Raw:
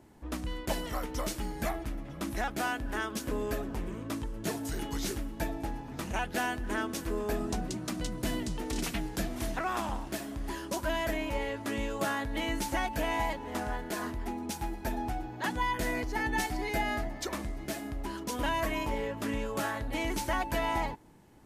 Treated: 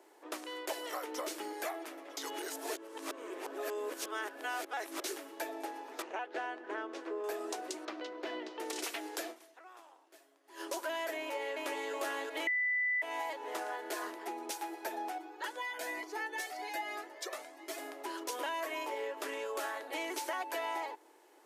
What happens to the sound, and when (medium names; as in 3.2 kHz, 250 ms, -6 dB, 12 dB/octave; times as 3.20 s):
1.07–1.53 s: tone controls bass +13 dB, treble -2 dB
2.17–5.04 s: reverse
6.02–7.24 s: tape spacing loss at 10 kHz 27 dB
7.85–8.60 s: distance through air 250 m
9.30–10.61 s: dip -23 dB, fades 0.34 s exponential
11.19–11.92 s: echo throw 370 ms, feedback 45%, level -0.5 dB
12.47–13.02 s: bleep 1.99 kHz -17.5 dBFS
15.18–17.78 s: Shepard-style flanger rising 1.2 Hz
whole clip: steep high-pass 340 Hz 48 dB/octave; compression 3:1, threshold -37 dBFS; trim +1 dB